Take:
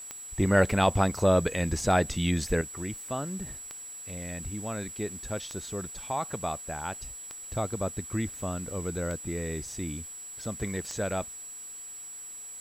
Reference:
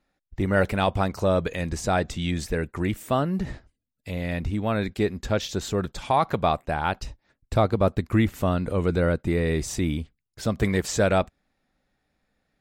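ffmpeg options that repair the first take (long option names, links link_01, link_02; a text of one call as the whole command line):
ffmpeg -i in.wav -af "adeclick=threshold=4,bandreject=frequency=7800:width=30,afwtdn=0.002,asetnsamples=nb_out_samples=441:pad=0,asendcmd='2.61 volume volume 10dB',volume=0dB" out.wav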